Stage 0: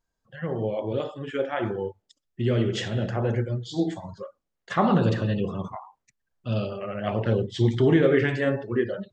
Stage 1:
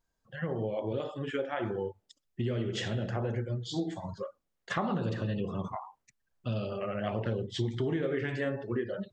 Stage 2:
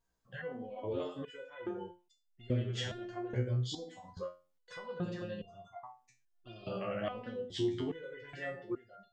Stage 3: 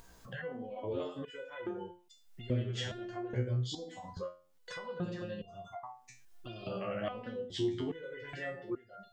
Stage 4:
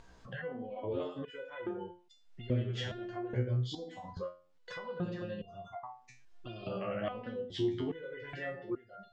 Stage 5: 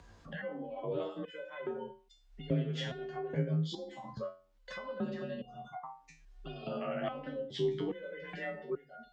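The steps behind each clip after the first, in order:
downward compressor 4 to 1, threshold −30 dBFS, peak gain reduction 13.5 dB
step-sequenced resonator 2.4 Hz 63–700 Hz; level +6.5 dB
upward compression, threshold −38 dBFS
high-frequency loss of the air 110 metres; level +1 dB
frequency shifter +34 Hz

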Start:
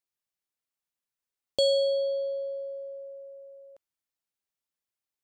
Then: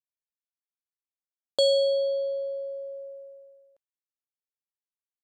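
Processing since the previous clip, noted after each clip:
downward expander −42 dBFS
level +2 dB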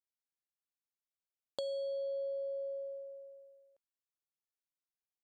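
dynamic equaliser 550 Hz, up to +8 dB, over −37 dBFS
brickwall limiter −17 dBFS, peak gain reduction 8 dB
downward compressor, threshold −30 dBFS, peak gain reduction 10 dB
level −7 dB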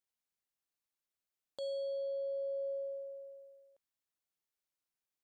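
brickwall limiter −36.5 dBFS, peak gain reduction 10 dB
level +2 dB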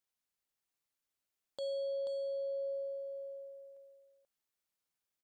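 single-tap delay 484 ms −6 dB
level +1 dB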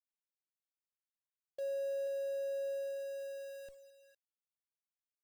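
spectral envelope exaggerated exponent 3
in parallel at −8.5 dB: comparator with hysteresis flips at −51 dBFS
on the sum: bit reduction 11 bits
level −1.5 dB

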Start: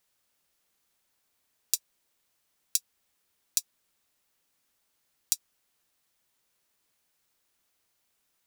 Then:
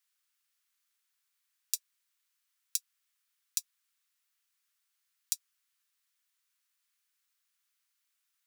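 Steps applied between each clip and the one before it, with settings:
inverse Chebyshev high-pass filter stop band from 450 Hz, stop band 50 dB
level −5 dB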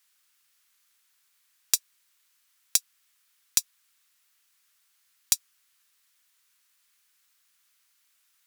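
sine wavefolder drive 4 dB, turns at −5 dBFS
level +3.5 dB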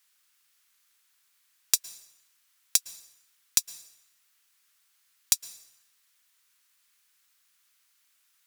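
dense smooth reverb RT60 0.85 s, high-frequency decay 0.9×, pre-delay 100 ms, DRR 18 dB

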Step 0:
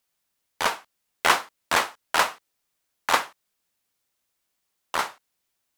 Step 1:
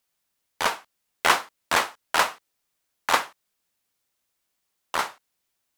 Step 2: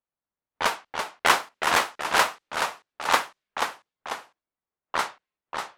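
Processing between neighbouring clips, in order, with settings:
no processing that can be heard
low-pass that shuts in the quiet parts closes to 1,300 Hz, open at −20.5 dBFS; delay with pitch and tempo change per echo 296 ms, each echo −1 semitone, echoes 2, each echo −6 dB; noise reduction from a noise print of the clip's start 8 dB

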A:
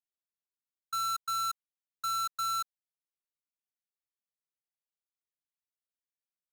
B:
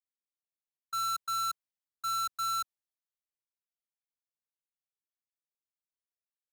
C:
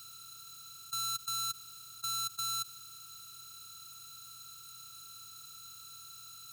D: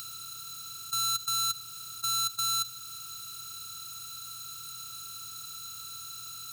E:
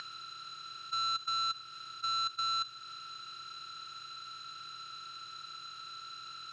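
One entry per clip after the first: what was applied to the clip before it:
multiband upward and downward expander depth 40%
compressor on every frequency bin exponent 0.2; flat-topped bell 980 Hz −12.5 dB 2.6 octaves; level +2 dB
convolution reverb RT60 0.75 s, pre-delay 3 ms, DRR 14.5 dB; in parallel at −0.5 dB: upward compression, threshold −39 dBFS
upward compression, threshold −36 dBFS; loudspeaker in its box 220–4,300 Hz, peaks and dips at 290 Hz −8 dB, 1,700 Hz +8 dB, 3,600 Hz −3 dB; highs frequency-modulated by the lows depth 0.12 ms

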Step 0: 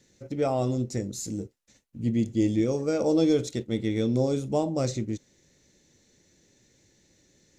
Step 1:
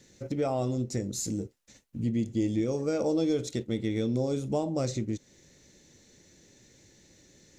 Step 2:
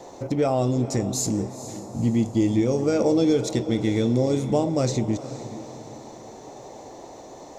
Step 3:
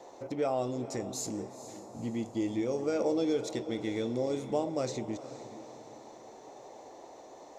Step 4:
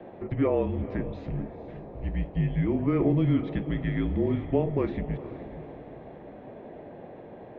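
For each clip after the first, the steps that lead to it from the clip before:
downward compressor 2 to 1, threshold −36 dBFS, peak gain reduction 10 dB; level +4.5 dB
noise in a band 260–870 Hz −50 dBFS; feedback delay with all-pass diffusion 464 ms, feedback 44%, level −13 dB; level +7 dB
bass and treble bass −11 dB, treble −4 dB; level −7 dB
single-sideband voice off tune −170 Hz 170–2,900 Hz; level +6 dB

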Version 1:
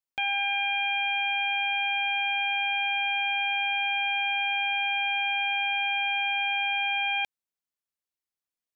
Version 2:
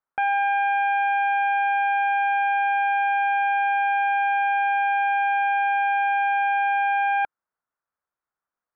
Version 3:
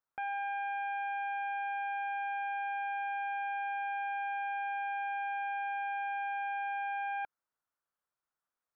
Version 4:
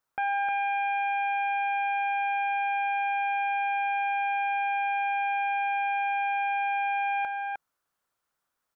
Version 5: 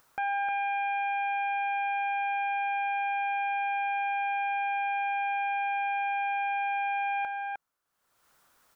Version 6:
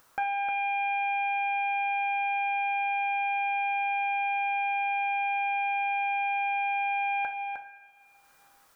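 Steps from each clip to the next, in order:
drawn EQ curve 300 Hz 0 dB, 1,400 Hz +12 dB, 3,400 Hz −20 dB; level +3 dB
brickwall limiter −26 dBFS, peak gain reduction 10.5 dB; level −4 dB
single-tap delay 308 ms −5 dB; level +8.5 dB
upward compression, threshold −47 dBFS; level −2 dB
coupled-rooms reverb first 0.45 s, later 2.6 s, from −16 dB, DRR 5 dB; level +2.5 dB

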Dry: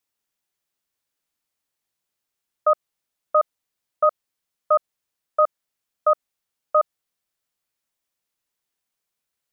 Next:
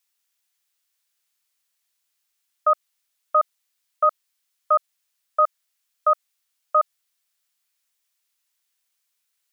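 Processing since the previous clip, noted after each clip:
tilt shelving filter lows −10 dB, about 770 Hz
level −2.5 dB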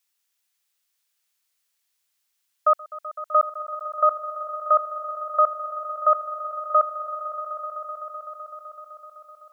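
echo that builds up and dies away 127 ms, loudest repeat 5, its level −16 dB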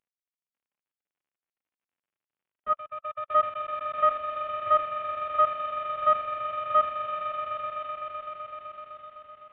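variable-slope delta modulation 16 kbit/s
harmonic and percussive parts rebalanced percussive −18 dB

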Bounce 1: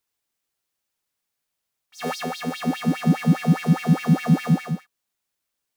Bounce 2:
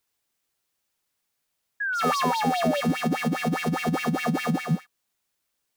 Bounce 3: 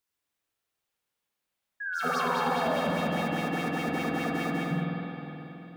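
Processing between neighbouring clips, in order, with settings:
compressor whose output falls as the input rises −18 dBFS, ratio −0.5; brickwall limiter −15.5 dBFS, peak gain reduction 6.5 dB; sound drawn into the spectrogram fall, 0:01.80–0:02.81, 550–1,700 Hz −27 dBFS
spring reverb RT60 3.6 s, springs 46/52 ms, chirp 30 ms, DRR −3.5 dB; level −8 dB

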